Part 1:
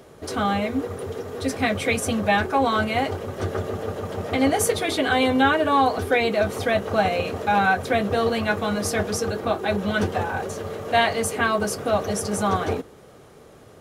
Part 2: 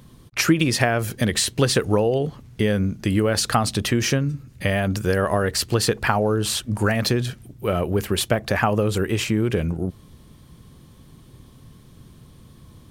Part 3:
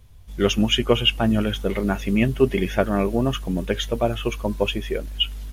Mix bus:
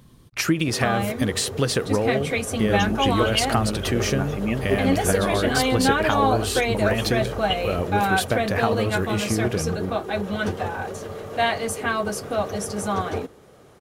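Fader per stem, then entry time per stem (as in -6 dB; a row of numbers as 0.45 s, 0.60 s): -2.5 dB, -3.5 dB, -6.0 dB; 0.45 s, 0.00 s, 2.30 s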